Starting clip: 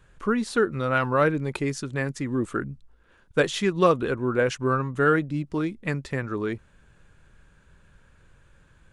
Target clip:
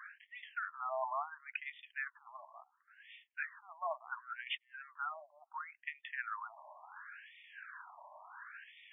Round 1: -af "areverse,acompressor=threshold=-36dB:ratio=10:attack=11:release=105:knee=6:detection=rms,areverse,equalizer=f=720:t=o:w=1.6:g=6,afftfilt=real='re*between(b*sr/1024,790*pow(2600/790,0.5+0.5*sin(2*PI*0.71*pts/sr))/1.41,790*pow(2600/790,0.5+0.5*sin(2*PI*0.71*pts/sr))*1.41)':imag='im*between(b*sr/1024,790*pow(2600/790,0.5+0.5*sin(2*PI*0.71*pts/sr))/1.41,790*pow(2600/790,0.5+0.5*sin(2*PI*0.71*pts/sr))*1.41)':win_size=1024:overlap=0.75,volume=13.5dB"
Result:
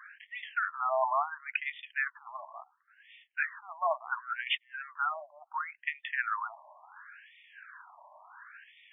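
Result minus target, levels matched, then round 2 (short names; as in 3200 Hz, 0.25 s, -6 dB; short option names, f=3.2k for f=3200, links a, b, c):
compressor: peak gain reduction -9 dB
-af "areverse,acompressor=threshold=-46dB:ratio=10:attack=11:release=105:knee=6:detection=rms,areverse,equalizer=f=720:t=o:w=1.6:g=6,afftfilt=real='re*between(b*sr/1024,790*pow(2600/790,0.5+0.5*sin(2*PI*0.71*pts/sr))/1.41,790*pow(2600/790,0.5+0.5*sin(2*PI*0.71*pts/sr))*1.41)':imag='im*between(b*sr/1024,790*pow(2600/790,0.5+0.5*sin(2*PI*0.71*pts/sr))/1.41,790*pow(2600/790,0.5+0.5*sin(2*PI*0.71*pts/sr))*1.41)':win_size=1024:overlap=0.75,volume=13.5dB"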